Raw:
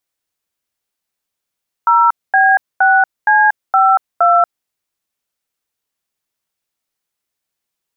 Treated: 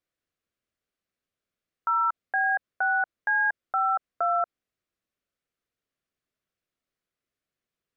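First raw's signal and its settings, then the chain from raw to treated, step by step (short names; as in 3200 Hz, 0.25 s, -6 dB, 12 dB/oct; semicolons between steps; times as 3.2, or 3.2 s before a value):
DTMF "0B6C52", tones 0.235 s, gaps 0.232 s, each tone -10 dBFS
LPF 1400 Hz 6 dB/oct; bell 880 Hz -12.5 dB 0.38 oct; limiter -18 dBFS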